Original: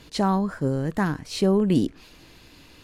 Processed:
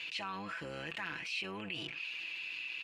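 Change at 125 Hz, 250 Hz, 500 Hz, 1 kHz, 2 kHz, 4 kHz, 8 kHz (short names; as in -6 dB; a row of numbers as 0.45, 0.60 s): -25.5, -25.5, -22.0, -15.0, -0.5, -3.5, -15.0 dB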